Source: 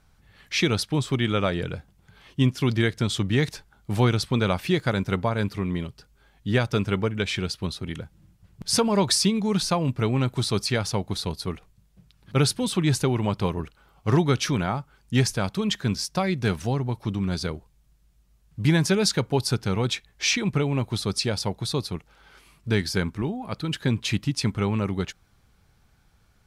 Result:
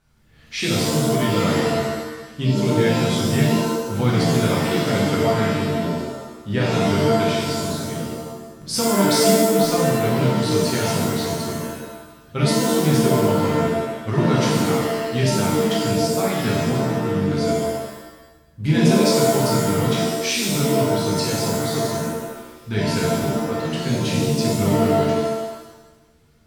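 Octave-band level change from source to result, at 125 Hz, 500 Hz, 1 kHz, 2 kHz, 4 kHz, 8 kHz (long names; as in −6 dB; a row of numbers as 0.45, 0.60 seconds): +3.5, +8.5, +7.5, +3.5, +2.5, +5.0 decibels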